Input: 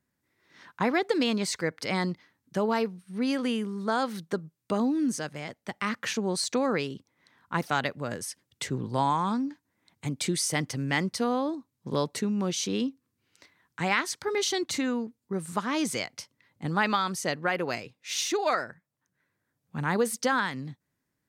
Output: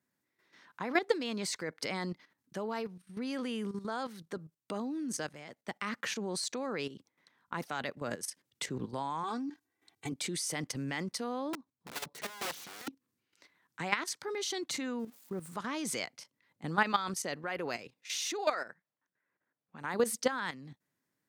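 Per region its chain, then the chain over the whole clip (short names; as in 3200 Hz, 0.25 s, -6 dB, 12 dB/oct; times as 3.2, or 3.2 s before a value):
9.23–10.12 notch 1200 Hz, Q 29 + comb 2.6 ms, depth 88%
11.53–12.88 high shelf 4800 Hz -10 dB + wrapped overs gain 31 dB
14.99–15.55 switching spikes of -35 dBFS + high shelf 2600 Hz -12 dB
18.52–19.94 low-pass opened by the level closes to 2300 Hz, open at -28.5 dBFS + bell 84 Hz -10 dB 2.9 oct
whole clip: Bessel high-pass 180 Hz, order 2; level quantiser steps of 12 dB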